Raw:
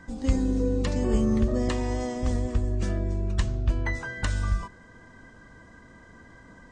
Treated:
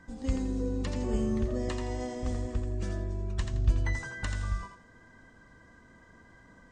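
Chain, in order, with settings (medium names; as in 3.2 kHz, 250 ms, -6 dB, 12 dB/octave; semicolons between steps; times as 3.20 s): 3.53–4.08 s: tone controls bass +6 dB, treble +8 dB; on a send: thinning echo 84 ms, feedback 28%, level -6 dB; on the sum: trim -6.5 dB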